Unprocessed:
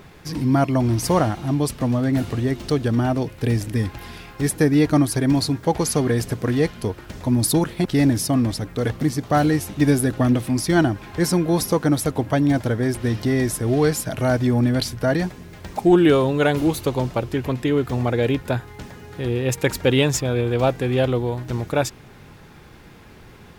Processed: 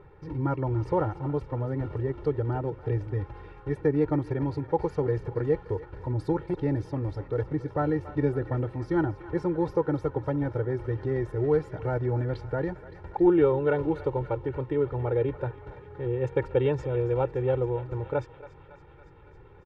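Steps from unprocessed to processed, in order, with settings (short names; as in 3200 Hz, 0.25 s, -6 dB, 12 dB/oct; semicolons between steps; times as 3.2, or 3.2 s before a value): LPF 1300 Hz 12 dB/oct; comb 2.2 ms, depth 89%; on a send: thinning echo 0.337 s, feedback 77%, high-pass 810 Hz, level -13.5 dB; on the sum: tempo 1.2×; gain -8.5 dB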